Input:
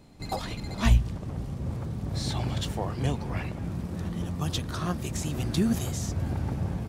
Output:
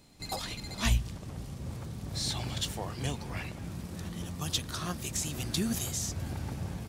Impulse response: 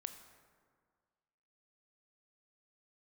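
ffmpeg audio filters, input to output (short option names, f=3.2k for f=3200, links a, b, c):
-af "highshelf=f=2.1k:g=12,volume=-7dB"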